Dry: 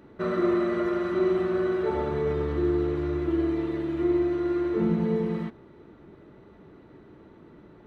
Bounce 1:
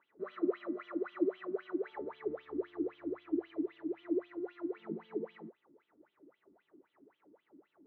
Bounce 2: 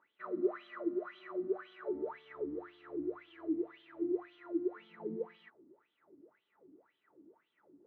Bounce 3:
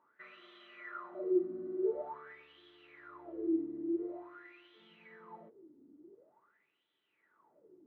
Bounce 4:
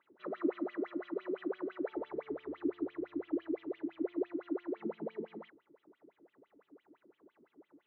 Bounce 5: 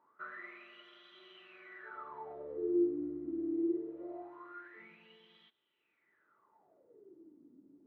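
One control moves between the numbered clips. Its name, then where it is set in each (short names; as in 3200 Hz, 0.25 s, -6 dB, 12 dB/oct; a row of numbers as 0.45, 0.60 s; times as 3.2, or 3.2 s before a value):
wah, rate: 3.8, 1.9, 0.47, 5.9, 0.23 Hz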